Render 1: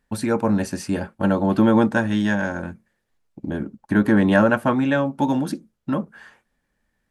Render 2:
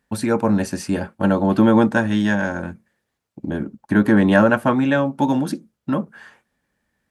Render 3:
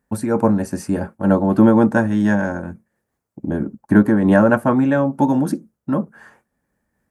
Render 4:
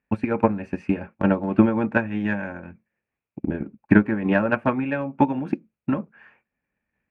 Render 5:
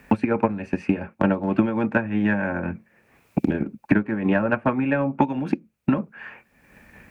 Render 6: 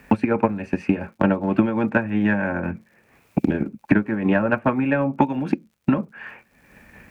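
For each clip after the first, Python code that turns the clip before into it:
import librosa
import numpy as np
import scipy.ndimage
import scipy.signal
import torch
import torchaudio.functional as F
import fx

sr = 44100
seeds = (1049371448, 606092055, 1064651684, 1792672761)

y1 = scipy.signal.sosfilt(scipy.signal.butter(2, 63.0, 'highpass', fs=sr, output='sos'), x)
y1 = y1 * librosa.db_to_amplitude(2.0)
y2 = fx.peak_eq(y1, sr, hz=3400.0, db=-13.0, octaves=1.6)
y2 = fx.am_noise(y2, sr, seeds[0], hz=5.7, depth_pct=60)
y2 = y2 * librosa.db_to_amplitude(5.0)
y3 = fx.lowpass_res(y2, sr, hz=2500.0, q=7.9)
y3 = fx.transient(y3, sr, attack_db=12, sustain_db=0)
y3 = y3 * librosa.db_to_amplitude(-11.0)
y4 = fx.band_squash(y3, sr, depth_pct=100)
y5 = fx.dmg_crackle(y4, sr, seeds[1], per_s=92.0, level_db=-52.0)
y5 = y5 * librosa.db_to_amplitude(1.5)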